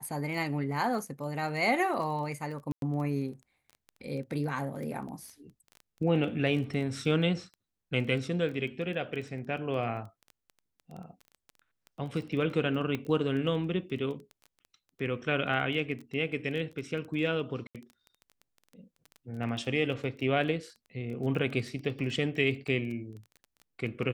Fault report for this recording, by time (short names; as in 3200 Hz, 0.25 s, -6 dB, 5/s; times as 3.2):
crackle 14/s -37 dBFS
2.72–2.82 gap 0.102 s
12.95 pop -20 dBFS
17.67–17.75 gap 77 ms